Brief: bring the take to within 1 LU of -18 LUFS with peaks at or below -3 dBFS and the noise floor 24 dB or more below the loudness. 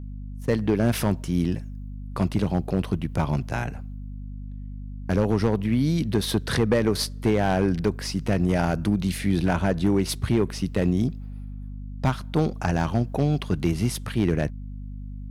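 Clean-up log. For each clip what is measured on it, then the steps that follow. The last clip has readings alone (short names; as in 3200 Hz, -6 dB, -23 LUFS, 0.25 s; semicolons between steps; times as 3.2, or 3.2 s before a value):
clipped 0.8%; flat tops at -13.0 dBFS; hum 50 Hz; harmonics up to 250 Hz; hum level -32 dBFS; loudness -24.5 LUFS; peak -13.0 dBFS; loudness target -18.0 LUFS
-> clip repair -13 dBFS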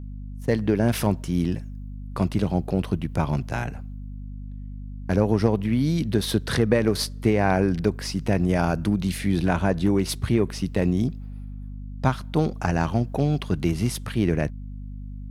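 clipped 0.0%; hum 50 Hz; harmonics up to 250 Hz; hum level -32 dBFS
-> notches 50/100/150/200/250 Hz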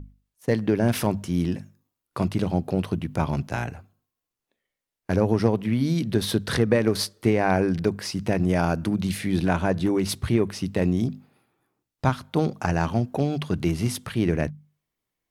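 hum none; loudness -25.0 LUFS; peak -5.5 dBFS; loudness target -18.0 LUFS
-> gain +7 dB; limiter -3 dBFS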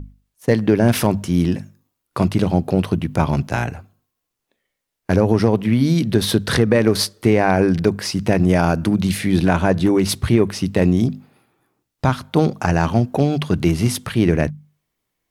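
loudness -18.5 LUFS; peak -3.0 dBFS; noise floor -78 dBFS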